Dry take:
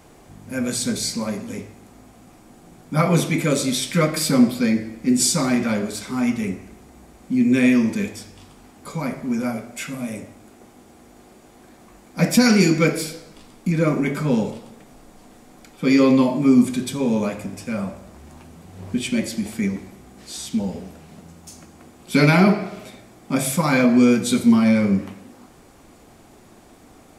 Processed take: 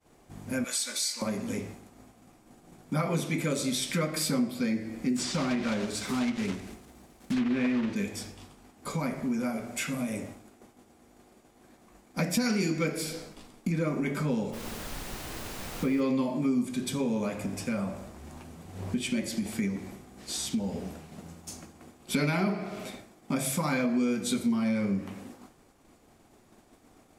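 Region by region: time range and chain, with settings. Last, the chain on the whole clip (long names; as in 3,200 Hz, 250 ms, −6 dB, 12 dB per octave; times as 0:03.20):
0:00.64–0:01.22: high-pass filter 1,000 Hz + comb filter 3.5 ms, depth 64%
0:05.16–0:07.96: one scale factor per block 3 bits + treble cut that deepens with the level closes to 2,500 Hz, closed at −13 dBFS
0:14.52–0:16.00: Gaussian smoothing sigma 2.9 samples + background noise pink −39 dBFS
whole clip: mains-hum notches 60/120/180 Hz; downward expander −40 dBFS; downward compressor 3 to 1, threshold −29 dBFS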